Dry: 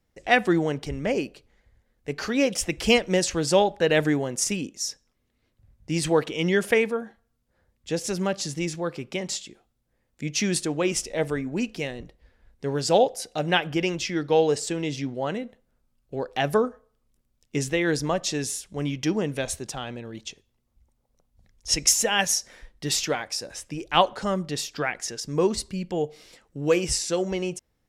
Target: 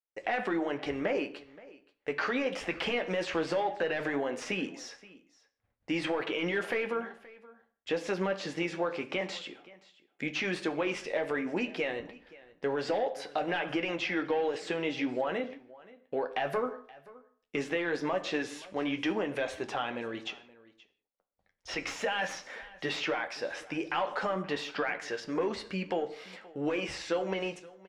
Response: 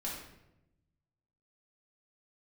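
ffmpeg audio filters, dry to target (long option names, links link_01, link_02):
-filter_complex "[0:a]asplit=2[link_01][link_02];[link_02]highpass=frequency=720:poles=1,volume=17dB,asoftclip=type=tanh:threshold=-3.5dB[link_03];[link_01][link_03]amix=inputs=2:normalize=0,lowpass=frequency=3500:poles=1,volume=-6dB,agate=range=-33dB:threshold=-51dB:ratio=3:detection=peak,bass=frequency=250:gain=-7,treble=frequency=4000:gain=-12,alimiter=limit=-15dB:level=0:latency=1:release=11,acompressor=threshold=-25dB:ratio=6,flanger=delay=9.4:depth=2.7:regen=-47:speed=0.15:shape=sinusoidal,acrossover=split=3800[link_04][link_05];[link_05]acompressor=threshold=-51dB:ratio=4:attack=1:release=60[link_06];[link_04][link_06]amix=inputs=2:normalize=0,aecho=1:1:525:0.0891,asplit=2[link_07][link_08];[1:a]atrim=start_sample=2205,afade=type=out:start_time=0.23:duration=0.01,atrim=end_sample=10584[link_09];[link_08][link_09]afir=irnorm=-1:irlink=0,volume=-11.5dB[link_10];[link_07][link_10]amix=inputs=2:normalize=0"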